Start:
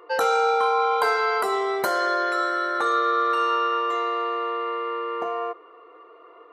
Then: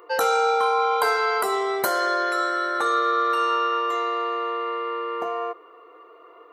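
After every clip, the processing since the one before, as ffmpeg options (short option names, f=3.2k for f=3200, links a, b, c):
-af "highshelf=f=8.4k:g=10.5"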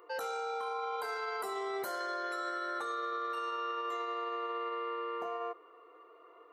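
-af "alimiter=limit=-20.5dB:level=0:latency=1:release=21,volume=-9dB"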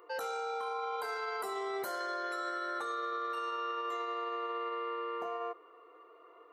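-af anull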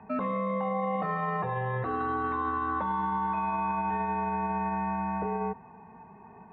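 -af "highpass=f=390:t=q:w=0.5412,highpass=f=390:t=q:w=1.307,lowpass=f=2.7k:t=q:w=0.5176,lowpass=f=2.7k:t=q:w=0.7071,lowpass=f=2.7k:t=q:w=1.932,afreqshift=-270,volume=7.5dB"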